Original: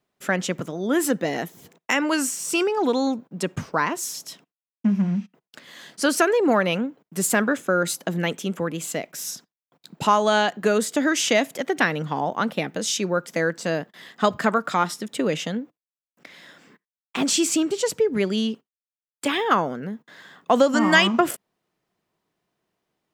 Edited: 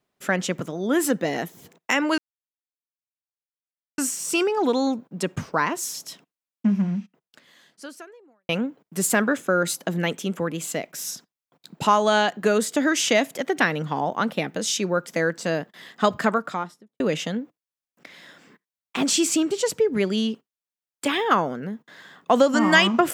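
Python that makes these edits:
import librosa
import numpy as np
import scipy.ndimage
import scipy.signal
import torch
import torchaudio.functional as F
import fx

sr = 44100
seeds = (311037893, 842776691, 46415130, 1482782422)

y = fx.studio_fade_out(x, sr, start_s=14.4, length_s=0.8)
y = fx.edit(y, sr, fx.insert_silence(at_s=2.18, length_s=1.8),
    fx.fade_out_span(start_s=4.92, length_s=1.77, curve='qua'), tone=tone)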